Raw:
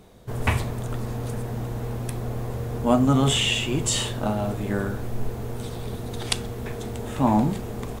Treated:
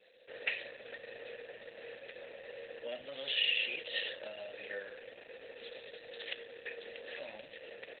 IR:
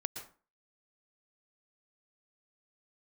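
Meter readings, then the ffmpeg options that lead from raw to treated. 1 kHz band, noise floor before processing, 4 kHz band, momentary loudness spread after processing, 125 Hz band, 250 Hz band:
−27.0 dB, −34 dBFS, −8.5 dB, 17 LU, below −40 dB, −36.0 dB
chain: -filter_complex "[0:a]adynamicequalizer=threshold=0.00355:dfrequency=7900:dqfactor=5.6:tfrequency=7900:tqfactor=5.6:attack=5:release=100:ratio=0.375:range=2:mode=cutabove:tftype=bell,acrossover=split=160|460|2200[link_01][link_02][link_03][link_04];[link_01]acompressor=threshold=-28dB:ratio=4[link_05];[link_02]acompressor=threshold=-36dB:ratio=4[link_06];[link_03]acompressor=threshold=-33dB:ratio=4[link_07];[link_04]acompressor=threshold=-31dB:ratio=4[link_08];[link_05][link_06][link_07][link_08]amix=inputs=4:normalize=0,aderivative,aresample=32000,aresample=44100,asoftclip=type=tanh:threshold=-13.5dB,asplit=3[link_09][link_10][link_11];[link_09]bandpass=frequency=530:width_type=q:width=8,volume=0dB[link_12];[link_10]bandpass=frequency=1840:width_type=q:width=8,volume=-6dB[link_13];[link_11]bandpass=frequency=2480:width_type=q:width=8,volume=-9dB[link_14];[link_12][link_13][link_14]amix=inputs=3:normalize=0,acontrast=62,volume=15.5dB" -ar 48000 -c:a libopus -b:a 8k

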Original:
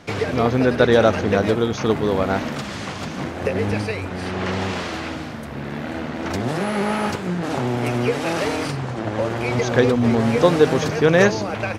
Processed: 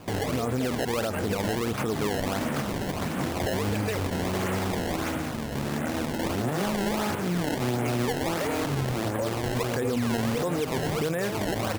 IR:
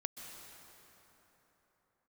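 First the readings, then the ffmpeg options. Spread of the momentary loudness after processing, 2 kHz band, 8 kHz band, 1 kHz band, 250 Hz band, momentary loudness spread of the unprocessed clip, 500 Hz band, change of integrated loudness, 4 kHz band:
3 LU, −8.0 dB, −0.5 dB, −6.0 dB, −6.5 dB, 13 LU, −9.5 dB, −7.5 dB, −4.5 dB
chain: -af "lowpass=3500,acompressor=threshold=-19dB:ratio=10,alimiter=limit=-19.5dB:level=0:latency=1:release=27,acrusher=samples=21:mix=1:aa=0.000001:lfo=1:lforange=33.6:lforate=1.5"

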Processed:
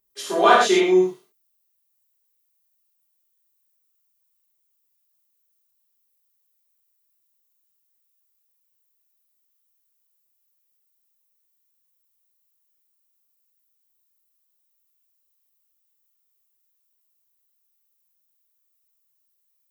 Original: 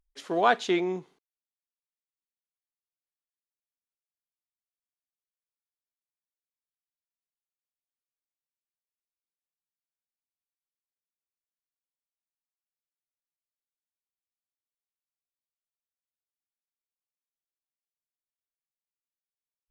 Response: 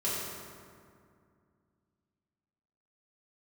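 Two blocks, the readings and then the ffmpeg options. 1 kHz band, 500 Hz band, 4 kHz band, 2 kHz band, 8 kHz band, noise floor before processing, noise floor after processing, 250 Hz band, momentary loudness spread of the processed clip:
+8.5 dB, +10.5 dB, +10.5 dB, +8.0 dB, +15.5 dB, below −85 dBFS, −71 dBFS, +9.0 dB, 11 LU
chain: -filter_complex "[0:a]aemphasis=mode=production:type=bsi[link_01];[1:a]atrim=start_sample=2205,atrim=end_sample=6174[link_02];[link_01][link_02]afir=irnorm=-1:irlink=0,volume=2.5dB"

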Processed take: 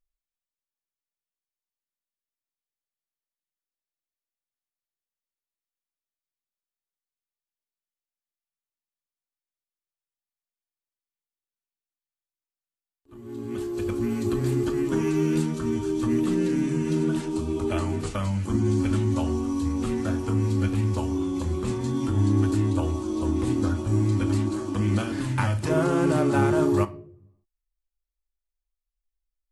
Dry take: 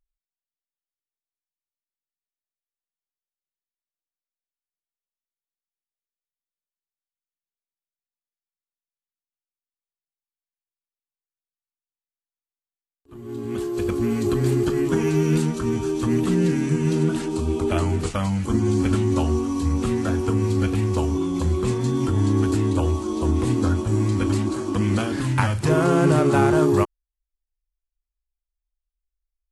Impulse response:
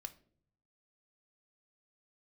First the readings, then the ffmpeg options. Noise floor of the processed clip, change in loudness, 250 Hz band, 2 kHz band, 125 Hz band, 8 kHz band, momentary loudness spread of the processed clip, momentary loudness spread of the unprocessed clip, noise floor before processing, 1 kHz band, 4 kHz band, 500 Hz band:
below −85 dBFS, −3.5 dB, −2.5 dB, −4.5 dB, −3.5 dB, −5.0 dB, 6 LU, 7 LU, below −85 dBFS, −4.5 dB, −4.5 dB, −4.5 dB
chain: -filter_complex "[1:a]atrim=start_sample=2205[link_01];[0:a][link_01]afir=irnorm=-1:irlink=0"

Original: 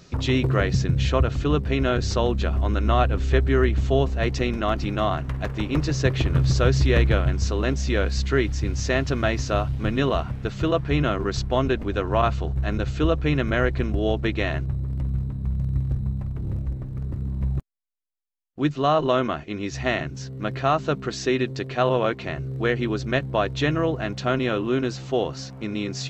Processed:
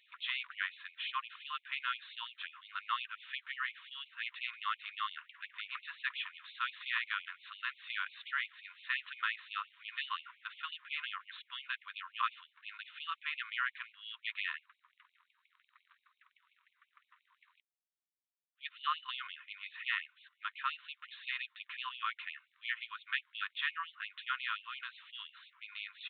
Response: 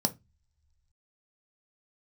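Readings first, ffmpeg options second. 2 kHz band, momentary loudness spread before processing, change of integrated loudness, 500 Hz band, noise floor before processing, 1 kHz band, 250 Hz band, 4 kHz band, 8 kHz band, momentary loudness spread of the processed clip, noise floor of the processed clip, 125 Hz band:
−7.5 dB, 8 LU, −16.0 dB, below −40 dB, −39 dBFS, −13.0 dB, below −40 dB, −8.0 dB, can't be measured, 10 LU, −82 dBFS, below −40 dB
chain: -af "aresample=8000,aresample=44100,afftfilt=real='re*gte(b*sr/1024,920*pow(2200/920,0.5+0.5*sin(2*PI*5.7*pts/sr)))':imag='im*gte(b*sr/1024,920*pow(2200/920,0.5+0.5*sin(2*PI*5.7*pts/sr)))':win_size=1024:overlap=0.75,volume=-6dB"

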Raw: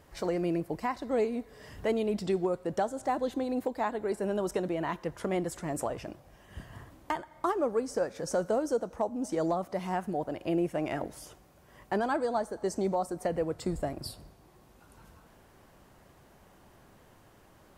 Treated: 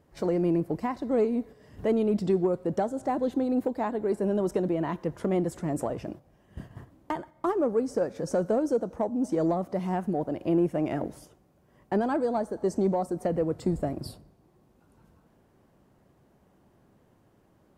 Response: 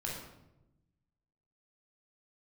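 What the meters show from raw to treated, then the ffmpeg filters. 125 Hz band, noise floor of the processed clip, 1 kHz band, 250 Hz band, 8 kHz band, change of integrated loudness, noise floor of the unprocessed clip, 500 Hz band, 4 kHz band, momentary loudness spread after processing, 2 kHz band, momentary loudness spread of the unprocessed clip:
+6.0 dB, −64 dBFS, 0.0 dB, +6.0 dB, −4.0 dB, +4.0 dB, −59 dBFS, +3.0 dB, can't be measured, 10 LU, −3.0 dB, 12 LU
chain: -filter_complex "[0:a]agate=range=-8dB:threshold=-46dB:ratio=16:detection=peak,equalizer=frequency=210:width=0.33:gain=11,asplit=2[link_01][link_02];[link_02]asoftclip=type=tanh:threshold=-18.5dB,volume=-9dB[link_03];[link_01][link_03]amix=inputs=2:normalize=0,volume=-6.5dB"

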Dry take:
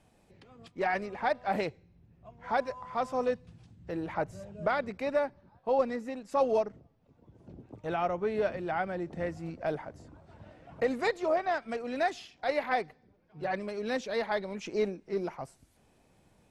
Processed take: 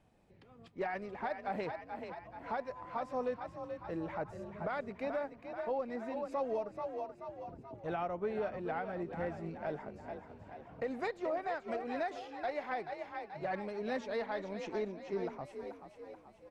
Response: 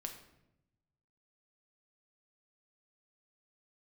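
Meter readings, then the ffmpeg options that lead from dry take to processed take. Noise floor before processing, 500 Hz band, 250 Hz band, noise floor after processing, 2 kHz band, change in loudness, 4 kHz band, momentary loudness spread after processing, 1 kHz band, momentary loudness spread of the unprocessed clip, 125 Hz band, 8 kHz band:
−66 dBFS, −6.5 dB, −5.0 dB, −59 dBFS, −7.5 dB, −7.0 dB, −9.5 dB, 10 LU, −6.0 dB, 10 LU, −5.0 dB, can't be measured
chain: -filter_complex "[0:a]highshelf=frequency=4400:gain=-10,asplit=2[link_01][link_02];[link_02]asplit=6[link_03][link_04][link_05][link_06][link_07][link_08];[link_03]adelay=432,afreqshift=39,volume=-9.5dB[link_09];[link_04]adelay=864,afreqshift=78,volume=-15.3dB[link_10];[link_05]adelay=1296,afreqshift=117,volume=-21.2dB[link_11];[link_06]adelay=1728,afreqshift=156,volume=-27dB[link_12];[link_07]adelay=2160,afreqshift=195,volume=-32.9dB[link_13];[link_08]adelay=2592,afreqshift=234,volume=-38.7dB[link_14];[link_09][link_10][link_11][link_12][link_13][link_14]amix=inputs=6:normalize=0[link_15];[link_01][link_15]amix=inputs=2:normalize=0,alimiter=limit=-23.5dB:level=0:latency=1:release=201,volume=-4dB"

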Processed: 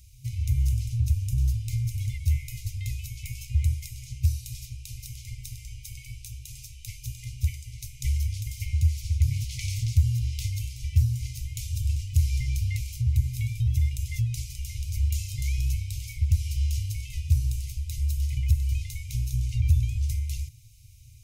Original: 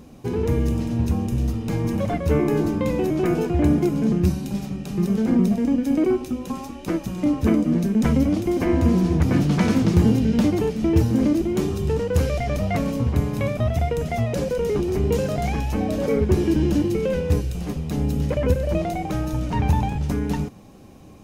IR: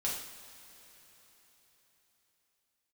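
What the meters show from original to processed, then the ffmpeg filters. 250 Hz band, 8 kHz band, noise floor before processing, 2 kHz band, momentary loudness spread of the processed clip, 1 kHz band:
below −25 dB, +1.5 dB, −38 dBFS, −10.5 dB, 14 LU, below −40 dB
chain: -filter_complex "[0:a]bass=frequency=250:gain=9,treble=frequency=4000:gain=12,afftfilt=real='re*(1-between(b*sr/4096,130,2000))':imag='im*(1-between(b*sr/4096,130,2000))':win_size=4096:overlap=0.75,acrossover=split=120[link_01][link_02];[link_02]acompressor=threshold=-23dB:ratio=6[link_03];[link_01][link_03]amix=inputs=2:normalize=0,volume=-8.5dB"

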